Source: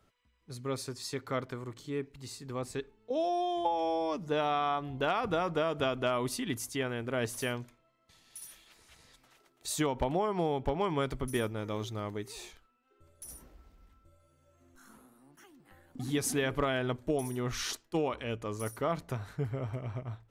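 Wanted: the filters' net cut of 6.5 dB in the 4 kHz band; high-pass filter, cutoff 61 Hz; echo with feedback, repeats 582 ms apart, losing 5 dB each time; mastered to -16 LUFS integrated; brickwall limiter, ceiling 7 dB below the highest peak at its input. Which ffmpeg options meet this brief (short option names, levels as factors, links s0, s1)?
-af "highpass=61,equalizer=f=4000:t=o:g=-9,alimiter=level_in=1.19:limit=0.0631:level=0:latency=1,volume=0.841,aecho=1:1:582|1164|1746|2328|2910|3492|4074:0.562|0.315|0.176|0.0988|0.0553|0.031|0.0173,volume=9.44"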